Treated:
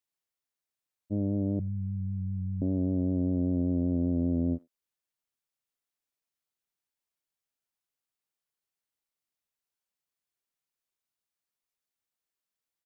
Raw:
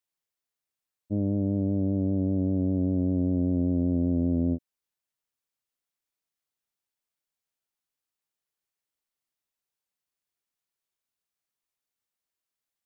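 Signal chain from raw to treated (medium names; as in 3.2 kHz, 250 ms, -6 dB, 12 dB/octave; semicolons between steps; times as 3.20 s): 1.59–2.62 s: inverse Chebyshev band-stop 320–820 Hz, stop band 50 dB; speakerphone echo 90 ms, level -26 dB; trim -2.5 dB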